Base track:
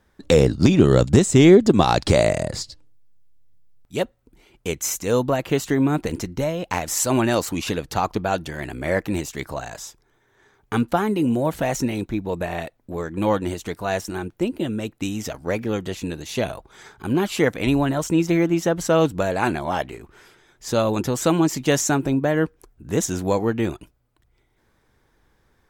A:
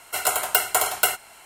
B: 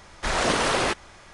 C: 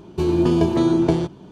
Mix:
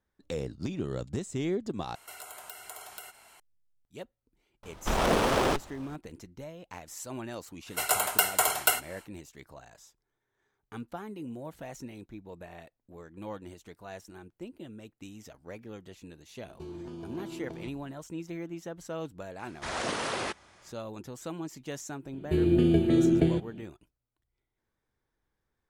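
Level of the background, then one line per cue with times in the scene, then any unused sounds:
base track -19.5 dB
1.95 s: replace with A -8.5 dB + compression 4:1, threshold -35 dBFS
4.63 s: add B -0.5 dB + sliding maximum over 17 samples
7.64 s: add A -4 dB, fades 0.10 s
16.42 s: add C -17 dB + compression, threshold -21 dBFS
19.39 s: add B -9.5 dB + high-pass 75 Hz
22.13 s: add C -4 dB + static phaser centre 2.4 kHz, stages 4

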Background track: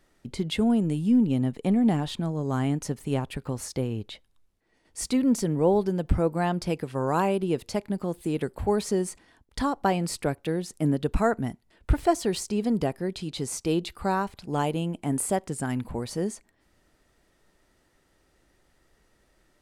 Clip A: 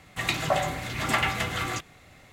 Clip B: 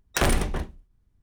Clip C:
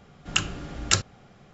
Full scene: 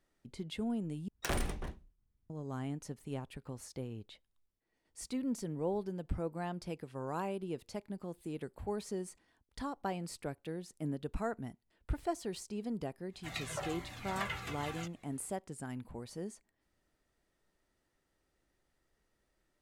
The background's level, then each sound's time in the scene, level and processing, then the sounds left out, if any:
background track -13.5 dB
1.08 s: replace with B -12.5 dB
13.07 s: add A -10 dB, fades 0.10 s + Shepard-style flanger falling 1.3 Hz
not used: C

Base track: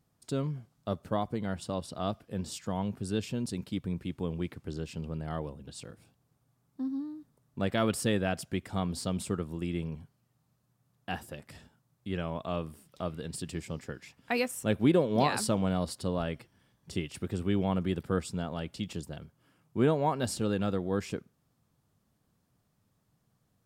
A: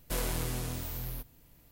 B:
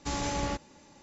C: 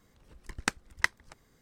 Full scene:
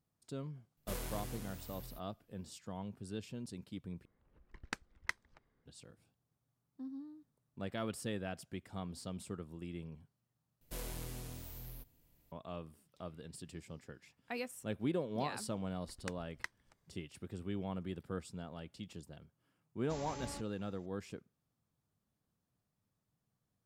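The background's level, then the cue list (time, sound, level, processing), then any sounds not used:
base track -11.5 dB
0.77 s: add A -9 dB + upward expansion, over -52 dBFS
4.05 s: replace with C -11.5 dB + level-controlled noise filter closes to 1.8 kHz, open at -28 dBFS
10.61 s: replace with A -10.5 dB + peaking EQ 1.3 kHz -3 dB 1.4 oct
15.40 s: add C -16.5 dB
19.84 s: add B -15 dB

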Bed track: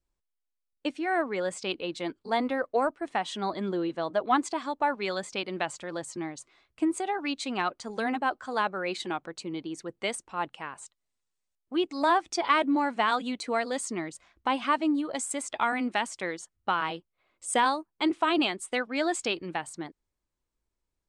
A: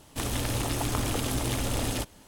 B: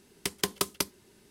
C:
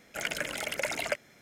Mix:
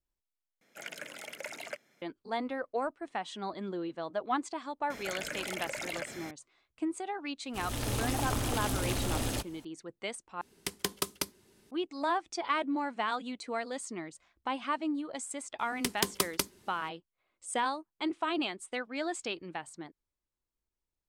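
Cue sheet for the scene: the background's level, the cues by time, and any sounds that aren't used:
bed track -7 dB
0.61 s: replace with C -10 dB + high-pass 170 Hz
4.90 s: add C -10 dB + level flattener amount 70%
7.38 s: add A -3.5 dB + fade-in on the opening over 0.52 s
10.41 s: replace with B -4 dB
15.59 s: add B -1 dB

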